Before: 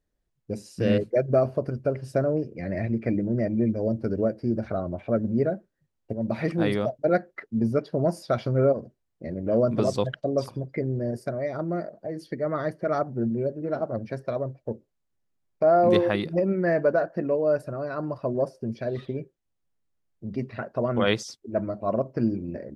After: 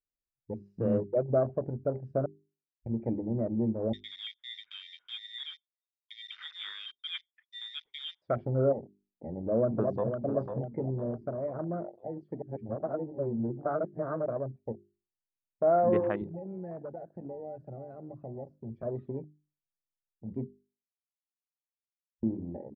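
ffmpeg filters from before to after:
-filter_complex "[0:a]asettb=1/sr,asplit=3[s0][s1][s2];[s0]atrim=end=3.934[s3];[s1]atrim=start=3.93:end=8.22,asetpts=PTS-STARTPTS,afade=t=in:d=0.004:c=qsin,afade=t=out:st=4.286:d=0.004:c=qsin,lowpass=f=3200:t=q:w=0.5098,lowpass=f=3200:t=q:w=0.6013,lowpass=f=3200:t=q:w=0.9,lowpass=f=3200:t=q:w=2.563,afreqshift=-3800[s4];[s2]atrim=start=8.216[s5];[s3][s4]acrossfade=d=0.004:c1=hsin:c2=qsin[s6];[s6][s5]acrossfade=d=0.004:c1=qsin:c2=hsin,asplit=2[s7][s8];[s8]afade=t=in:st=9.37:d=0.01,afade=t=out:st=10.14:d=0.01,aecho=0:1:500|1000|1500|2000|2500|3000:0.421697|0.210848|0.105424|0.0527121|0.026356|0.013178[s9];[s7][s9]amix=inputs=2:normalize=0,asettb=1/sr,asplit=3[s10][s11][s12];[s10]atrim=end=16.214[s13];[s11]atrim=start=16.21:end=18.83,asetpts=PTS-STARTPTS,afade=t=in:d=0.004:c=qsin,afade=t=out:st=2.616:d=0.004:c=qsin,acrossover=split=120|3000[s14][s15][s16];[s15]acompressor=threshold=0.0178:ratio=4:attack=3.2:release=140:knee=2.83:detection=peak[s17];[s14][s17][s16]amix=inputs=3:normalize=0[s18];[s12]atrim=start=18.826[s19];[s13][s18]acrossfade=d=0.004:c1=hsin:c2=qsin[s20];[s20][s19]acrossfade=d=0.004:c1=qsin:c2=hsin,asplit=7[s21][s22][s23][s24][s25][s26][s27];[s21]atrim=end=2.26,asetpts=PTS-STARTPTS,afade=t=out:st=2.256:d=0.004:c=hsin[s28];[s22]atrim=start=2.26:end=2.86,asetpts=PTS-STARTPTS,volume=0[s29];[s23]atrim=start=2.86:end=12.422,asetpts=PTS-STARTPTS,afade=t=in:d=0.004:c=hsin[s30];[s24]atrim=start=12.418:end=14.262,asetpts=PTS-STARTPTS,areverse[s31];[s25]atrim=start=14.258:end=20.47,asetpts=PTS-STARTPTS,afade=t=out:st=6.208:d=0.004:c=hsin[s32];[s26]atrim=start=20.47:end=22.23,asetpts=PTS-STARTPTS,volume=0[s33];[s27]atrim=start=22.23,asetpts=PTS-STARTPTS,afade=t=in:d=0.004:c=hsin[s34];[s28][s29][s30]concat=n=3:v=0:a=1[s35];[s35][s31]acrossfade=d=0.004:c1=hsin:c2=hsin[s36];[s32][s33][s34]concat=n=3:v=0:a=1[s37];[s36][s37]acrossfade=d=0.004:c1=hsin:c2=hsin,afwtdn=0.0224,lowpass=1600,bandreject=f=50:t=h:w=6,bandreject=f=100:t=h:w=6,bandreject=f=150:t=h:w=6,bandreject=f=200:t=h:w=6,bandreject=f=250:t=h:w=6,bandreject=f=300:t=h:w=6,bandreject=f=350:t=h:w=6,bandreject=f=400:t=h:w=6,volume=0.562"

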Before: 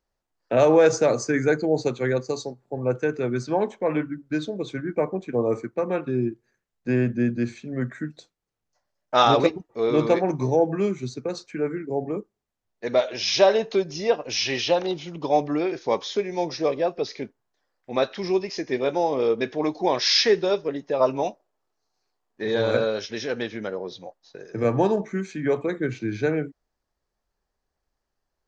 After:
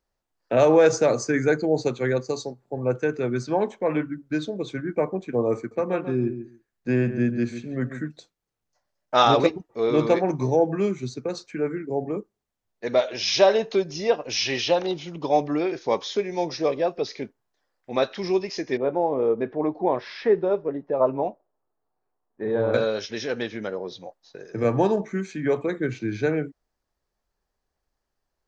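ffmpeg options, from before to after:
-filter_complex "[0:a]asettb=1/sr,asplit=3[s0][s1][s2];[s0]atrim=end=5.574[s3];[s1]atrim=start=5.57:end=8.08,asetpts=PTS-STARTPTS,afade=t=in:d=0.004:c=qsin,afade=t=out:st=2.506:d=0.004:c=qsin,asplit=2[s4][s5];[s5]adelay=141,lowpass=f=2000:p=1,volume=0.316,asplit=2[s6][s7];[s7]adelay=141,lowpass=f=2000:p=1,volume=0.15[s8];[s4][s6][s8]amix=inputs=3:normalize=0,atrim=end_sample=110691[s9];[s2]atrim=start=8.076[s10];[s3][s9]acrossfade=d=0.004:c1=hsin:c2=qsin[s11];[s11][s10]acrossfade=d=0.004:c1=qsin:c2=hsin,asettb=1/sr,asplit=3[s12][s13][s14];[s12]atrim=end=18.774[s15];[s13]atrim=start=18.77:end=22.74,asetpts=PTS-STARTPTS,afade=t=in:d=0.004:c=qsin,afade=t=out:st=3.966:d=0.004:c=qsin,lowpass=1200[s16];[s14]atrim=start=22.736[s17];[s15][s16]acrossfade=d=0.004:c1=hsin:c2=qsin[s18];[s18][s17]acrossfade=d=0.004:c1=qsin:c2=hsin"

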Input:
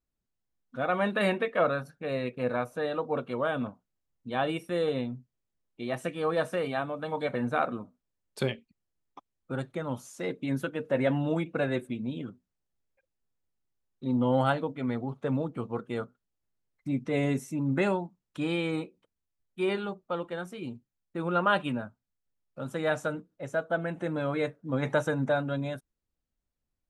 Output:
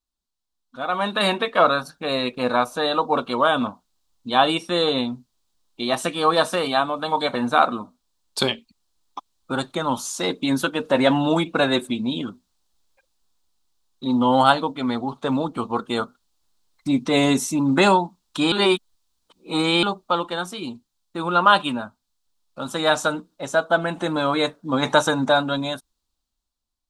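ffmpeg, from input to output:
-filter_complex "[0:a]asettb=1/sr,asplit=3[s0][s1][s2];[s0]atrim=end=4.554[s3];[s1]atrim=start=4.55:end=4.98,asetpts=PTS-STARTPTS,afade=t=in:d=0.004:c=qsin,afade=t=out:st=0.426:d=0.004:c=qsin,lowpass=7100[s4];[s2]atrim=start=4.976[s5];[s3][s4]acrossfade=d=0.004:c1=hsin:c2=qsin[s6];[s6][s5]acrossfade=d=0.004:c1=qsin:c2=hsin,asplit=3[s7][s8][s9];[s7]atrim=end=18.522[s10];[s8]atrim=start=18.518:end=19.832,asetpts=PTS-STARTPTS,areverse[s11];[s9]atrim=start=19.828[s12];[s10][s11]acrossfade=d=0.004:c1=hsin:c2=hsin[s13];[s13][s12]acrossfade=d=0.004:c1=hsin:c2=hsin,equalizer=f=125:t=o:w=1:g=-12,equalizer=f=500:t=o:w=1:g=-7,equalizer=f=1000:t=o:w=1:g=7,equalizer=f=2000:t=o:w=1:g=-8,equalizer=f=4000:t=o:w=1:g=10,equalizer=f=8000:t=o:w=1:g=4,dynaudnorm=f=220:g=11:m=5.01"

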